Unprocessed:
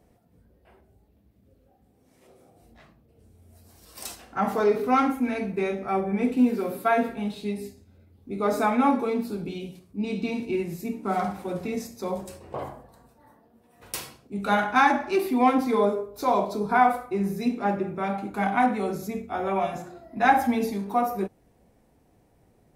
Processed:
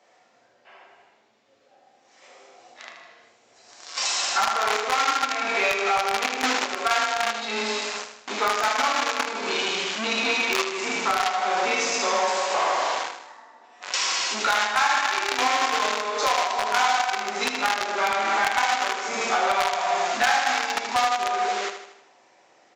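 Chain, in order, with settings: frequency shift +13 Hz; non-linear reverb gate 0.49 s falling, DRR -5 dB; in parallel at -3.5 dB: companded quantiser 2-bit; on the sum: HPF 930 Hz 12 dB/oct; compressor 8:1, threshold -28 dBFS, peak gain reduction 23 dB; downsampling 16000 Hz; on a send: feedback echo 78 ms, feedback 51%, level -9 dB; on the sum: overloaded stage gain 21.5 dB; gain +9 dB

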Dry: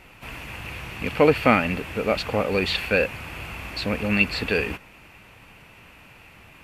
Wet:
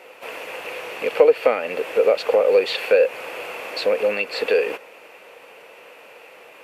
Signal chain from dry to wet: compressor 4:1, threshold -24 dBFS, peak gain reduction 11 dB; resonant high-pass 490 Hz, resonance Q 4.9; gain +2.5 dB

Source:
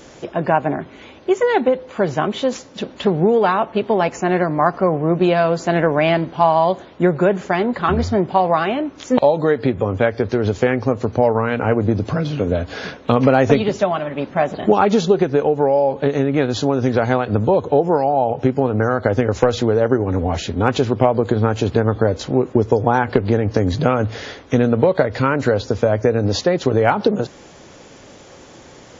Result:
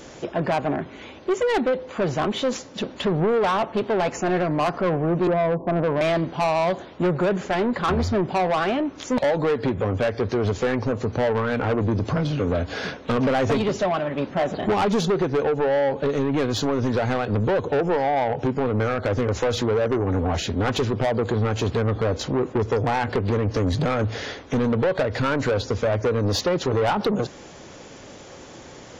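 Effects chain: 5.27–6.01 Chebyshev low-pass 1100 Hz, order 10; soft clip -17 dBFS, distortion -8 dB

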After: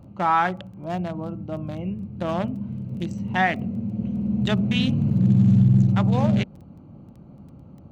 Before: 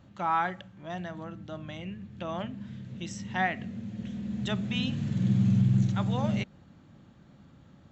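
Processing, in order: Wiener smoothing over 25 samples; in parallel at +1.5 dB: limiter -24 dBFS, peak gain reduction 9 dB; on the sum: crackle 12/s -45 dBFS; gain +3.5 dB

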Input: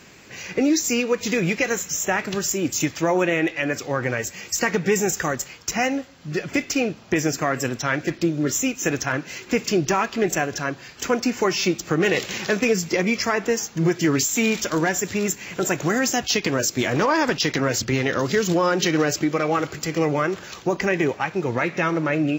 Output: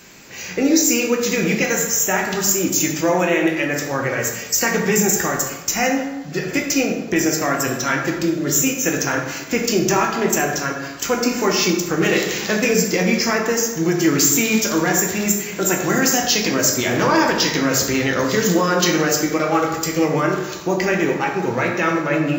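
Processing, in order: high shelf 7300 Hz +11.5 dB; notches 50/100/150 Hz; plate-style reverb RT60 1.1 s, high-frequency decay 0.55×, DRR 0 dB

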